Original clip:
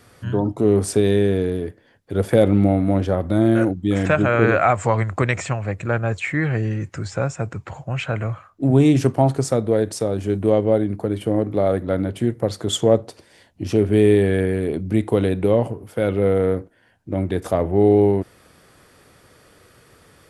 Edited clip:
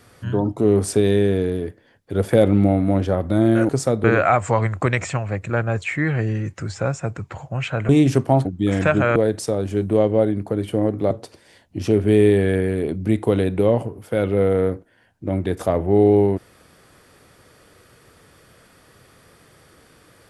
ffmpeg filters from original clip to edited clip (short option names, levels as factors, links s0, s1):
-filter_complex "[0:a]asplit=7[s0][s1][s2][s3][s4][s5][s6];[s0]atrim=end=3.692[s7];[s1]atrim=start=9.338:end=9.692[s8];[s2]atrim=start=4.398:end=8.252[s9];[s3]atrim=start=8.778:end=9.342[s10];[s4]atrim=start=3.688:end=4.402[s11];[s5]atrim=start=9.688:end=11.642[s12];[s6]atrim=start=12.958[s13];[s7][s8]acrossfade=d=0.004:c1=hsin:c2=hsin[s14];[s14][s9]acrossfade=d=0.004:c1=hsin:c2=hsin[s15];[s15][s10]acrossfade=d=0.004:c1=hsin:c2=hsin[s16];[s16][s11]acrossfade=d=0.004:c1=hsin:c2=hsin[s17];[s17][s12]acrossfade=d=0.004:c1=hsin:c2=hsin[s18];[s18][s13]acrossfade=d=0.004:c1=hsin:c2=hsin"